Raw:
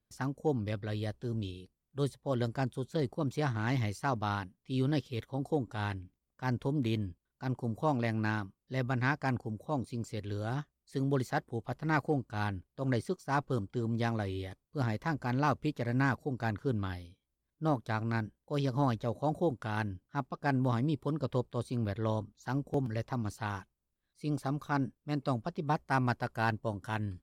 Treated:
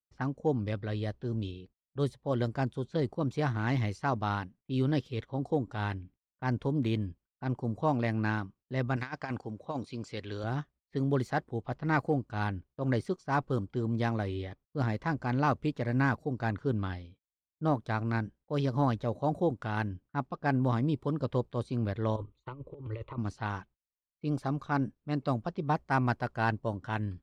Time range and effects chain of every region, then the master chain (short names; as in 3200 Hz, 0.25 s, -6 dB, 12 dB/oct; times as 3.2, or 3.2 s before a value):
8.96–10.44 tilt +2.5 dB/oct + negative-ratio compressor -35 dBFS, ratio -0.5
22.16–23.18 negative-ratio compressor -36 dBFS, ratio -0.5 + fixed phaser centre 1100 Hz, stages 8
whole clip: gate -57 dBFS, range -26 dB; low-pass opened by the level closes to 1900 Hz, open at -28.5 dBFS; high shelf 6400 Hz -11 dB; gain +2 dB